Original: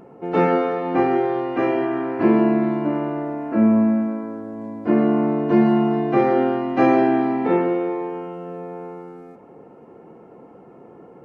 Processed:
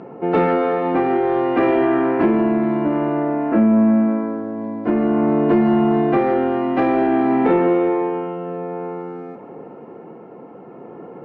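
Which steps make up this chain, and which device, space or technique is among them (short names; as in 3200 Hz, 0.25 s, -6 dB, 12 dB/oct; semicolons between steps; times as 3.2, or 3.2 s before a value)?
AM radio (BPF 120–3500 Hz; compressor 6:1, threshold -19 dBFS, peak gain reduction 8 dB; soft clip -14.5 dBFS, distortion -22 dB; tremolo 0.53 Hz, depth 28%); gain +8.5 dB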